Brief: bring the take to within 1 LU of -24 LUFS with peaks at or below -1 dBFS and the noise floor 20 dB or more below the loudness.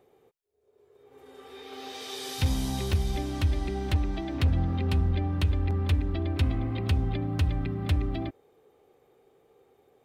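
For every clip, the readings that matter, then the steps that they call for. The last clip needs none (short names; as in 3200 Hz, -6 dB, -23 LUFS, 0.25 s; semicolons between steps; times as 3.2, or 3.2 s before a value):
clipped 0.4%; flat tops at -17.0 dBFS; dropouts 1; longest dropout 1.3 ms; loudness -29.0 LUFS; peak -17.0 dBFS; loudness target -24.0 LUFS
-> clip repair -17 dBFS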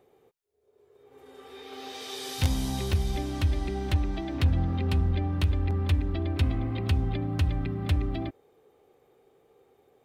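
clipped 0.0%; dropouts 1; longest dropout 1.3 ms
-> interpolate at 2.93, 1.3 ms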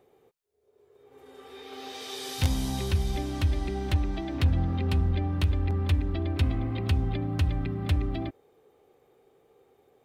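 dropouts 0; loudness -28.5 LUFS; peak -8.0 dBFS; loudness target -24.0 LUFS
-> gain +4.5 dB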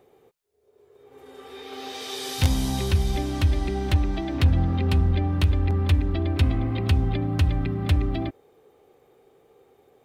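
loudness -24.0 LUFS; peak -3.5 dBFS; noise floor -61 dBFS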